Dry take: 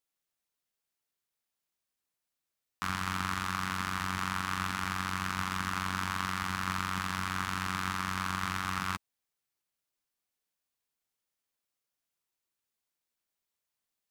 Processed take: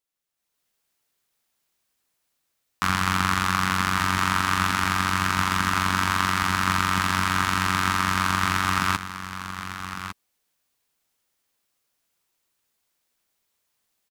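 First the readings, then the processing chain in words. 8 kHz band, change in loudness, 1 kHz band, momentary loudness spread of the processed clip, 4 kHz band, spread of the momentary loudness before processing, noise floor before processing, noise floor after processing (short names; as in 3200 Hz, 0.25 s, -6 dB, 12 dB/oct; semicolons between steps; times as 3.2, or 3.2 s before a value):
+11.0 dB, +10.5 dB, +11.0 dB, 11 LU, +11.0 dB, 1 LU, under -85 dBFS, -77 dBFS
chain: on a send: echo 1.154 s -11.5 dB; on the sum: AGC gain up to 11.5 dB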